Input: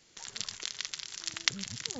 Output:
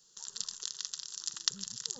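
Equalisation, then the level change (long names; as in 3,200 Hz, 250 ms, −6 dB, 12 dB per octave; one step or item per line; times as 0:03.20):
dynamic equaliser 1,900 Hz, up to +4 dB, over −53 dBFS, Q 5.5
high-shelf EQ 2,800 Hz +12 dB
phaser with its sweep stopped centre 440 Hz, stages 8
−7.5 dB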